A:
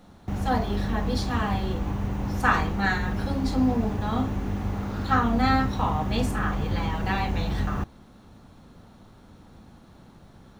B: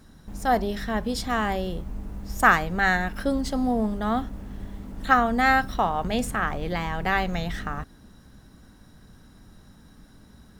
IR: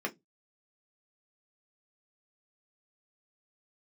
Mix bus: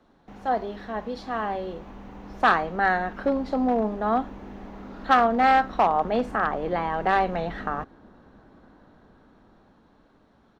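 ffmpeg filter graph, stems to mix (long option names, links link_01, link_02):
-filter_complex "[0:a]volume=-9dB[link_01];[1:a]lowpass=1100,dynaudnorm=framelen=490:gausssize=9:maxgain=14dB,volume=10.5dB,asoftclip=hard,volume=-10.5dB,adelay=2.7,volume=-2dB[link_02];[link_01][link_02]amix=inputs=2:normalize=0,acrossover=split=290 5500:gain=0.178 1 0.224[link_03][link_04][link_05];[link_03][link_04][link_05]amix=inputs=3:normalize=0"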